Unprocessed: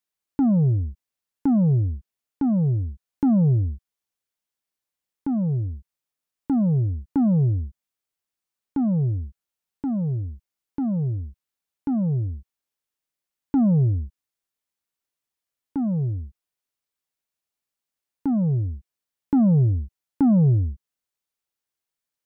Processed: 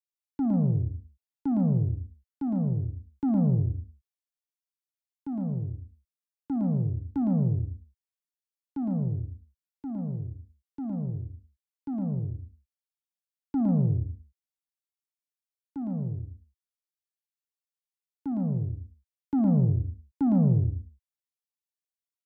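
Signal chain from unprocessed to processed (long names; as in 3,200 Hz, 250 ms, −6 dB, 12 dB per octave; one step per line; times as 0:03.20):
multi-tap delay 59/112/146/224 ms −14.5/−5.5/−11.5/−18 dB
multiband upward and downward expander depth 40%
level −7.5 dB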